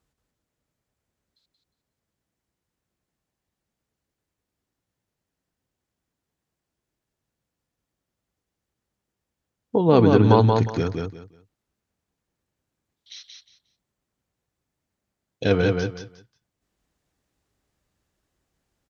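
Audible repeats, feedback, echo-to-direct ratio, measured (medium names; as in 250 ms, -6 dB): 3, 22%, -4.0 dB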